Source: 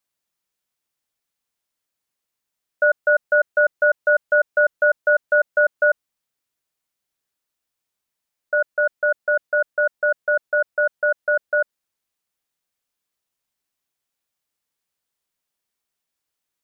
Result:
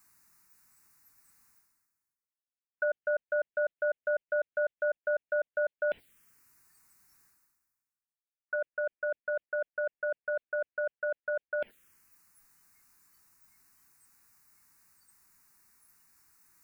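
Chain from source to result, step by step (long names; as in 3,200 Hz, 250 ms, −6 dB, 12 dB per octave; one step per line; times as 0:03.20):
noise reduction from a noise print of the clip's start 25 dB
reversed playback
upward compression, threshold −18 dBFS
reversed playback
phaser swept by the level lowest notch 560 Hz, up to 1,200 Hz, full sweep at −17 dBFS
level −7.5 dB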